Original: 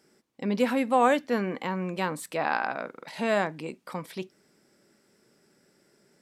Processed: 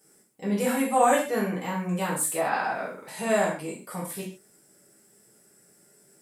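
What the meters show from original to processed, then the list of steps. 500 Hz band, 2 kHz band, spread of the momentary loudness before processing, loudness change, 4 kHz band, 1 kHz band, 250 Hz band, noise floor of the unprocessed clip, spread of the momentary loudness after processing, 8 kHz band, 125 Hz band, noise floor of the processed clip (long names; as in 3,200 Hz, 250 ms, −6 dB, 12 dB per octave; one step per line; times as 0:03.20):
+1.5 dB, +0.5 dB, 17 LU, +1.5 dB, −0.5 dB, +1.5 dB, +0.5 dB, −66 dBFS, 14 LU, +14.0 dB, +3.0 dB, −60 dBFS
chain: high shelf with overshoot 6,400 Hz +12.5 dB, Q 1.5
reverb whose tail is shaped and stops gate 170 ms falling, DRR −7 dB
level −6.5 dB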